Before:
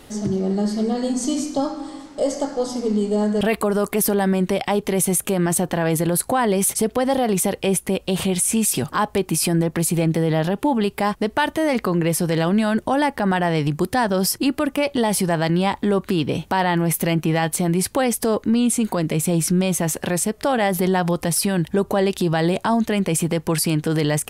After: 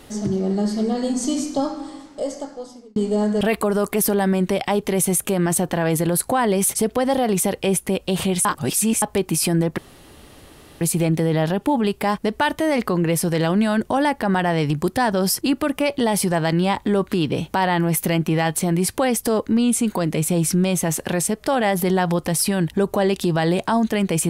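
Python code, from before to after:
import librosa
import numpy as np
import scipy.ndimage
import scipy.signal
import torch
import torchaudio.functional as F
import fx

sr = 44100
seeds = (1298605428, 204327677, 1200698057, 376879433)

y = fx.edit(x, sr, fx.fade_out_span(start_s=1.73, length_s=1.23),
    fx.reverse_span(start_s=8.45, length_s=0.57),
    fx.insert_room_tone(at_s=9.78, length_s=1.03), tone=tone)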